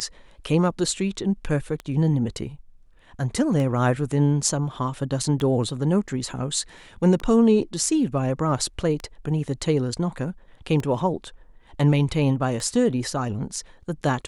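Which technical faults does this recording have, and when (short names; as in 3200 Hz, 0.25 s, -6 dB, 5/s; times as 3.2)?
tick 33 1/3 rpm -17 dBFS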